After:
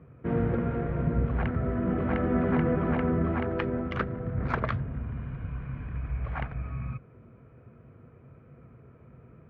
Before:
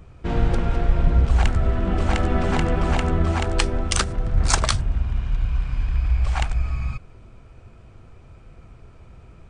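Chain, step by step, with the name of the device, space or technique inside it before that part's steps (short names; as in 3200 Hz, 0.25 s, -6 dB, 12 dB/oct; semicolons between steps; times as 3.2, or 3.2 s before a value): bass cabinet (speaker cabinet 67–2100 Hz, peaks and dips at 76 Hz -8 dB, 140 Hz +7 dB, 240 Hz +7 dB, 470 Hz +6 dB, 820 Hz -6 dB); notch 2700 Hz, Q 28; gain -5 dB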